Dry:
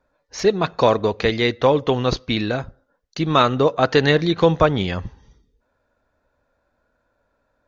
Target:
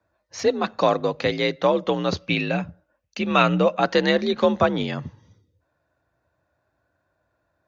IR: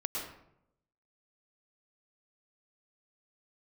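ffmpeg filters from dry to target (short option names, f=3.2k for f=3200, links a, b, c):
-filter_complex "[0:a]asettb=1/sr,asplit=3[a][b][c];[a]atrim=end=2.214[d];[b]atrim=start=2.21:end=3.81,asetpts=PTS-STARTPTS,afade=t=in:d=0.004:c=qsin,afade=t=out:st=1.596:d=0.004:c=qsin,equalizer=f=125:t=o:w=0.33:g=9,equalizer=f=315:t=o:w=0.33:g=-5,equalizer=f=500:t=o:w=0.33:g=3,equalizer=f=2.5k:t=o:w=0.33:g=12,equalizer=f=4k:t=o:w=0.33:g=-4[e];[c]atrim=start=3.806[f];[d][e]acrossfade=d=0.004:c1=hsin:c2=qsin[g];[g][f]acrossfade=d=0.004:c1=qsin:c2=hsin,afreqshift=51,volume=-3.5dB"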